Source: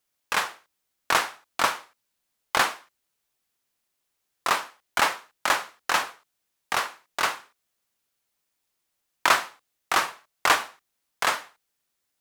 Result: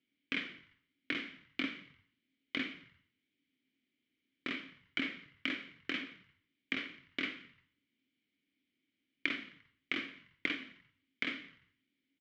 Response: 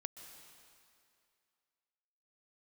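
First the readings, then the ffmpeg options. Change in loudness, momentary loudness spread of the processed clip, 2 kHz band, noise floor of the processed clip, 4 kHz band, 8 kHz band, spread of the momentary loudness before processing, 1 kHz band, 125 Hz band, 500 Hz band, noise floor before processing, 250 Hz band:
-13.5 dB, 12 LU, -12.0 dB, -85 dBFS, -12.0 dB, under -30 dB, 11 LU, -28.5 dB, -8.5 dB, -17.5 dB, -79 dBFS, +1.5 dB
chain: -filter_complex "[0:a]lowpass=4.1k,lowshelf=f=380:g=10,acompressor=threshold=-30dB:ratio=6,asplit=3[a][b][c];[a]bandpass=f=270:t=q:w=8,volume=0dB[d];[b]bandpass=f=2.29k:t=q:w=8,volume=-6dB[e];[c]bandpass=f=3.01k:t=q:w=8,volume=-9dB[f];[d][e][f]amix=inputs=3:normalize=0,asplit=2[g][h];[h]asplit=4[i][j][k][l];[i]adelay=87,afreqshift=-43,volume=-20dB[m];[j]adelay=174,afreqshift=-86,volume=-25dB[n];[k]adelay=261,afreqshift=-129,volume=-30.1dB[o];[l]adelay=348,afreqshift=-172,volume=-35.1dB[p];[m][n][o][p]amix=inputs=4:normalize=0[q];[g][q]amix=inputs=2:normalize=0,volume=12dB"

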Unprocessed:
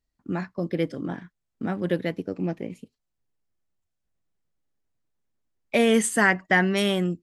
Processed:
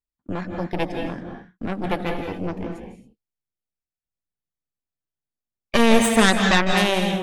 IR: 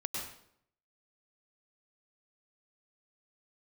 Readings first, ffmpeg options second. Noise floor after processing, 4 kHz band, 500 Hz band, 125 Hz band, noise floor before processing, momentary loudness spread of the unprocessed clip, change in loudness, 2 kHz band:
under -85 dBFS, +8.0 dB, +2.5 dB, +2.0 dB, -81 dBFS, 14 LU, +3.5 dB, +1.5 dB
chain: -filter_complex "[0:a]aeval=exprs='0.447*(cos(1*acos(clip(val(0)/0.447,-1,1)))-cos(1*PI/2))+0.2*(cos(4*acos(clip(val(0)/0.447,-1,1)))-cos(4*PI/2))':c=same,agate=range=-14dB:threshold=-42dB:ratio=16:detection=peak,asplit=2[a][b];[1:a]atrim=start_sample=2205,afade=t=out:st=0.23:d=0.01,atrim=end_sample=10584,asetrate=27783,aresample=44100[c];[b][c]afir=irnorm=-1:irlink=0,volume=-2dB[d];[a][d]amix=inputs=2:normalize=0,volume=-5dB"

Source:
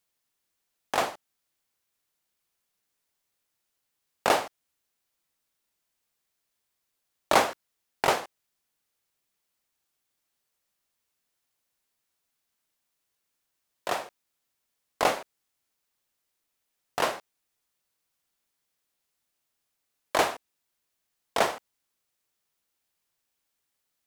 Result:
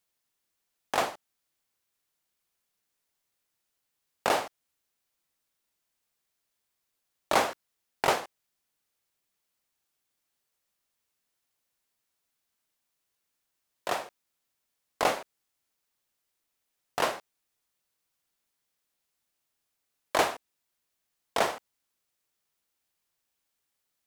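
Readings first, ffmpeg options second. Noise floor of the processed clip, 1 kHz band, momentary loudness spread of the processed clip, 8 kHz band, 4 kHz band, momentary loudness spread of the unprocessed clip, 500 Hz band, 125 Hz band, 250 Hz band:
-82 dBFS, -2.0 dB, 16 LU, -2.0 dB, -2.0 dB, 18 LU, -2.0 dB, -2.0 dB, -2.0 dB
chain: -af "alimiter=limit=-10dB:level=0:latency=1:release=81,volume=-1dB"

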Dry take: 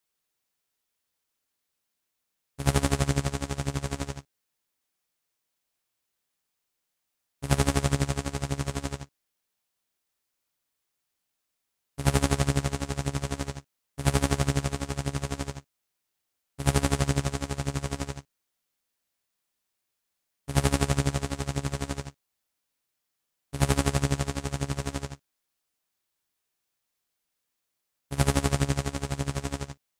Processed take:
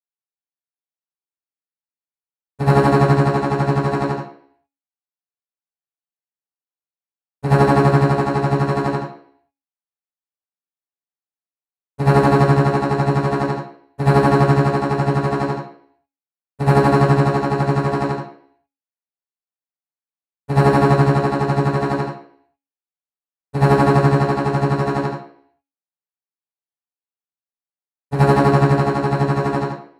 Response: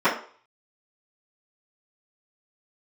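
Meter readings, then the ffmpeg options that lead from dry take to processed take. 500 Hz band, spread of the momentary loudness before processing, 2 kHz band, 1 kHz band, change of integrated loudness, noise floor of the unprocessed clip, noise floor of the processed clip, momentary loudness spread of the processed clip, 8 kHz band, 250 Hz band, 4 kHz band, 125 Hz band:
+16.0 dB, 12 LU, +10.5 dB, +16.5 dB, +12.0 dB, -82 dBFS, under -85 dBFS, 10 LU, n/a, +12.5 dB, +0.5 dB, +11.0 dB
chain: -filter_complex "[0:a]bandreject=f=275.8:t=h:w=4,bandreject=f=551.6:t=h:w=4,bandreject=f=827.4:t=h:w=4,bandreject=f=1.1032k:t=h:w=4,bandreject=f=1.379k:t=h:w=4,bandreject=f=1.6548k:t=h:w=4,bandreject=f=1.9306k:t=h:w=4,bandreject=f=2.2064k:t=h:w=4,bandreject=f=2.4822k:t=h:w=4,bandreject=f=2.758k:t=h:w=4,bandreject=f=3.0338k:t=h:w=4,bandreject=f=3.3096k:t=h:w=4,bandreject=f=3.5854k:t=h:w=4,bandreject=f=3.8612k:t=h:w=4,bandreject=f=4.137k:t=h:w=4,bandreject=f=4.4128k:t=h:w=4,bandreject=f=4.6886k:t=h:w=4,bandreject=f=4.9644k:t=h:w=4,bandreject=f=5.2402k:t=h:w=4,bandreject=f=5.516k:t=h:w=4,bandreject=f=5.7918k:t=h:w=4,bandreject=f=6.0676k:t=h:w=4,bandreject=f=6.3434k:t=h:w=4,bandreject=f=6.6192k:t=h:w=4,bandreject=f=6.895k:t=h:w=4,bandreject=f=7.1708k:t=h:w=4,bandreject=f=7.4466k:t=h:w=4,bandreject=f=7.7224k:t=h:w=4,bandreject=f=7.9982k:t=h:w=4,bandreject=f=8.274k:t=h:w=4,agate=range=-33dB:threshold=-45dB:ratio=3:detection=peak,asoftclip=type=hard:threshold=-19dB[a];[1:a]atrim=start_sample=2205,afade=t=out:st=0.41:d=0.01,atrim=end_sample=18522,asetrate=33957,aresample=44100[b];[a][b]afir=irnorm=-1:irlink=0,volume=-6.5dB"

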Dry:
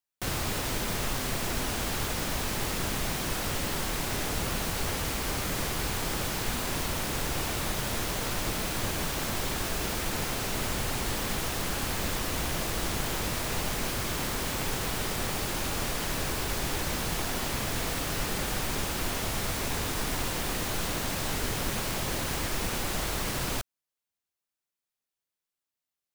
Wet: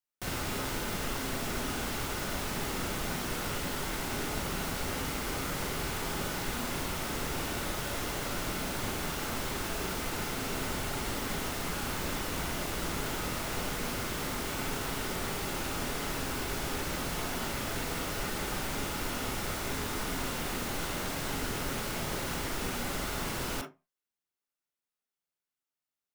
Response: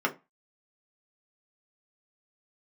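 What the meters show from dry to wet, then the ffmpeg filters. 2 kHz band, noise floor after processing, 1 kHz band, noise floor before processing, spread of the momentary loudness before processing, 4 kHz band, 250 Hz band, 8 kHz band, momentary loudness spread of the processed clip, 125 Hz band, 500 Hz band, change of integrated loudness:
-2.5 dB, under -85 dBFS, -2.0 dB, under -85 dBFS, 0 LU, -4.0 dB, -1.5 dB, -5.0 dB, 0 LU, -4.5 dB, -2.0 dB, -3.5 dB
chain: -filter_complex "[0:a]asplit=2[a][b];[1:a]atrim=start_sample=2205,adelay=38[c];[b][c]afir=irnorm=-1:irlink=0,volume=-11.5dB[d];[a][d]amix=inputs=2:normalize=0,volume=-5dB"

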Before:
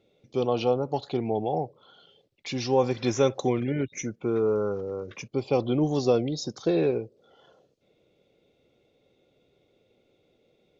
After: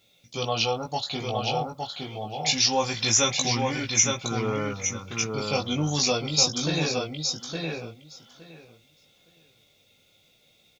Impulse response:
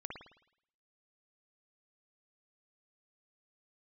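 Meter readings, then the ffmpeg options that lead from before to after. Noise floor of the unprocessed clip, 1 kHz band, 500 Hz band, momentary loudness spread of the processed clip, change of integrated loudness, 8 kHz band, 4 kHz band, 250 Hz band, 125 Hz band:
-68 dBFS, +3.0 dB, -5.0 dB, 12 LU, +2.0 dB, n/a, +15.0 dB, -2.5 dB, +1.5 dB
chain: -filter_complex "[0:a]equalizer=f=390:t=o:w=1:g=-12.5,flanger=delay=17.5:depth=2.9:speed=0.27,asplit=2[a][b];[b]adelay=865,lowpass=f=4.6k:p=1,volume=-3.5dB,asplit=2[c][d];[d]adelay=865,lowpass=f=4.6k:p=1,volume=0.16,asplit=2[e][f];[f]adelay=865,lowpass=f=4.6k:p=1,volume=0.16[g];[a][c][e][g]amix=inputs=4:normalize=0,crystalizer=i=7:c=0,volume=4dB"

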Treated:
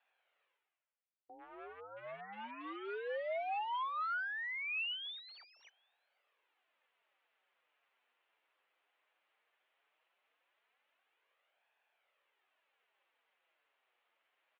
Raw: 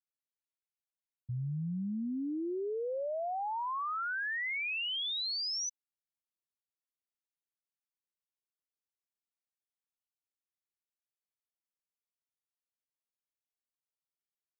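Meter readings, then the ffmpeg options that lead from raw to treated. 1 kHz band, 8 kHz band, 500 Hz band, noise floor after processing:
-2.5 dB, n/a, -5.5 dB, -85 dBFS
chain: -filter_complex "[0:a]areverse,acompressor=mode=upward:threshold=-45dB:ratio=2.5,areverse,asplit=2[a][b];[b]adelay=758,volume=-28dB,highshelf=f=4k:g=-17.1[c];[a][c]amix=inputs=2:normalize=0,aeval=exprs='0.0266*(cos(1*acos(clip(val(0)/0.0266,-1,1)))-cos(1*PI/2))+0.00299*(cos(5*acos(clip(val(0)/0.0266,-1,1)))-cos(5*PI/2))+0.000944*(cos(6*acos(clip(val(0)/0.0266,-1,1)))-cos(6*PI/2))+0.00376*(cos(7*acos(clip(val(0)/0.0266,-1,1)))-cos(7*PI/2))+0.000473*(cos(8*acos(clip(val(0)/0.0266,-1,1)))-cos(8*PI/2))':c=same,flanger=delay=1.1:depth=8.7:regen=27:speed=0.17:shape=sinusoidal,aeval=exprs='0.0133*(abs(mod(val(0)/0.0133+3,4)-2)-1)':c=same,highpass=f=580:t=q:w=0.5412,highpass=f=580:t=q:w=1.307,lowpass=f=3.1k:t=q:w=0.5176,lowpass=f=3.1k:t=q:w=0.7071,lowpass=f=3.1k:t=q:w=1.932,afreqshift=-100,volume=4.5dB"

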